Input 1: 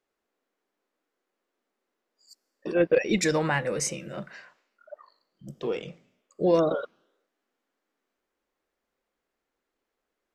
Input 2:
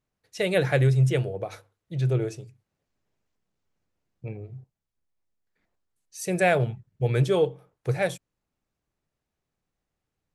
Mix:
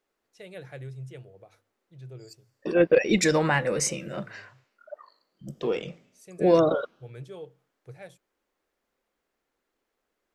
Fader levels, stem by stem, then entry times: +2.5 dB, -19.5 dB; 0.00 s, 0.00 s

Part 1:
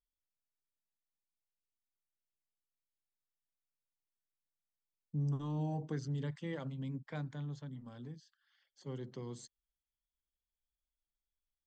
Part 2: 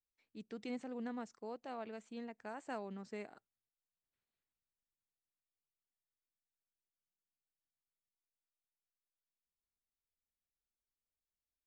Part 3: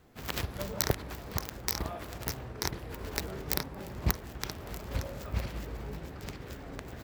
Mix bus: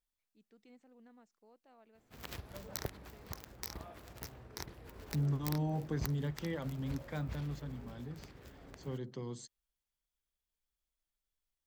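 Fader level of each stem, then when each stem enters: +2.0 dB, -18.0 dB, -11.5 dB; 0.00 s, 0.00 s, 1.95 s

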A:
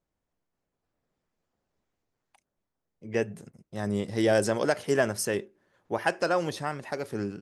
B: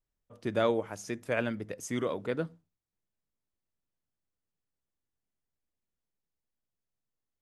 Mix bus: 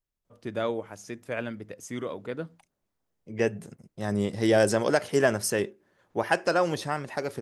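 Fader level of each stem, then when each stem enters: +2.0 dB, -2.0 dB; 0.25 s, 0.00 s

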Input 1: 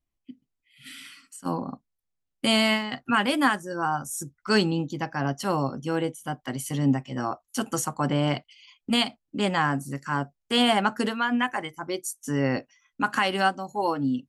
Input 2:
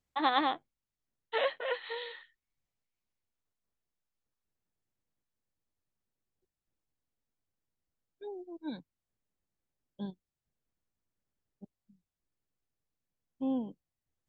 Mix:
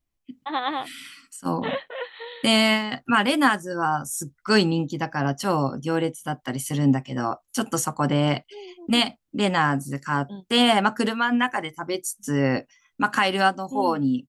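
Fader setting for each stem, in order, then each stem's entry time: +3.0 dB, +1.5 dB; 0.00 s, 0.30 s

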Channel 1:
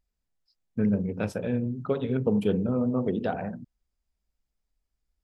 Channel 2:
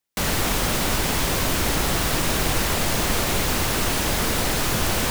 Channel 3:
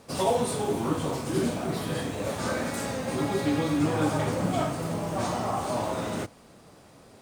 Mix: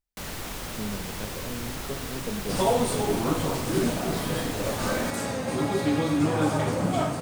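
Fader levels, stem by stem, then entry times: -9.5 dB, -13.0 dB, +1.5 dB; 0.00 s, 0.00 s, 2.40 s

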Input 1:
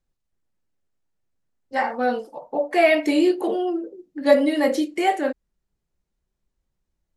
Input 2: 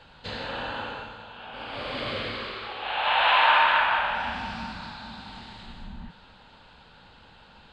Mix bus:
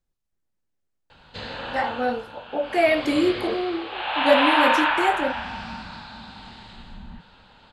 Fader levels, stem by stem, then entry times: -2.5 dB, 0.0 dB; 0.00 s, 1.10 s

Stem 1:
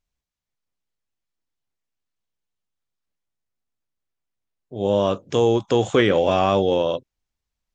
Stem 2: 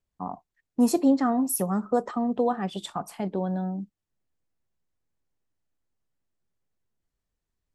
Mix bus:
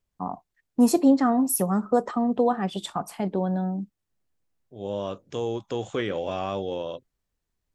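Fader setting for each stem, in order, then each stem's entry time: -11.0 dB, +2.5 dB; 0.00 s, 0.00 s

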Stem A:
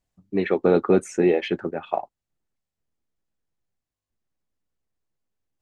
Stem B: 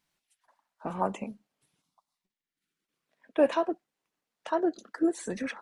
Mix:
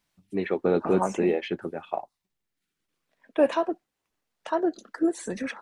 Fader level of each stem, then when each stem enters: -5.0 dB, +2.0 dB; 0.00 s, 0.00 s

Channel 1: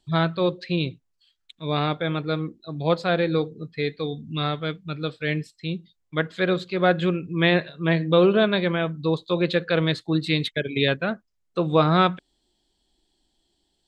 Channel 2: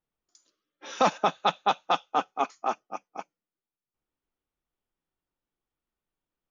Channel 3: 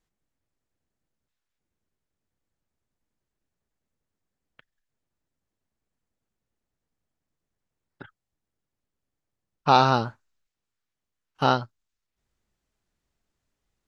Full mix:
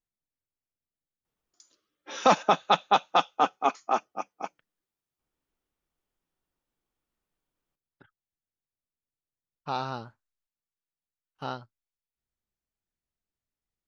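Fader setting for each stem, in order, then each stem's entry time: mute, +2.5 dB, -14.0 dB; mute, 1.25 s, 0.00 s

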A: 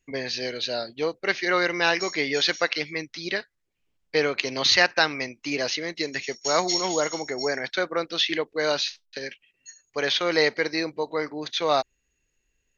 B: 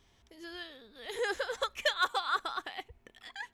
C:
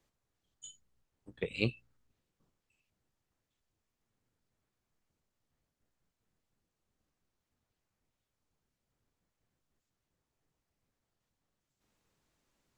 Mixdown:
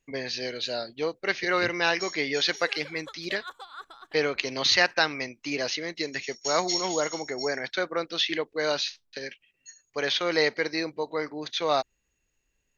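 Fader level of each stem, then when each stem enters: -2.5 dB, -11.5 dB, -8.0 dB; 0.00 s, 1.45 s, 0.00 s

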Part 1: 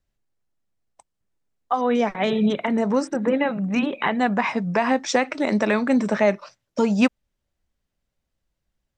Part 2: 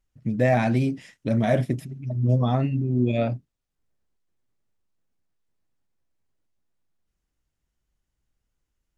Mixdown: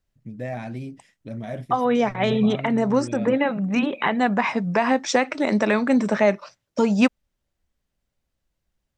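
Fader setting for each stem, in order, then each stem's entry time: +0.5 dB, -11.0 dB; 0.00 s, 0.00 s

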